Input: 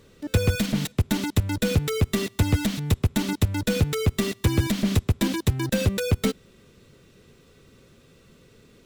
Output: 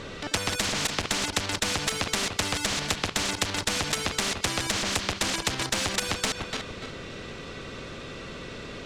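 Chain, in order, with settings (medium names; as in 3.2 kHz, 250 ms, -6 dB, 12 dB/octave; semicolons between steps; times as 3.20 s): backward echo that repeats 146 ms, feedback 46%, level -13 dB; treble shelf 9.1 kHz -5 dB; in parallel at -6 dB: sine folder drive 6 dB, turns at -10 dBFS; on the sum: distance through air 91 m; spectrum-flattening compressor 4:1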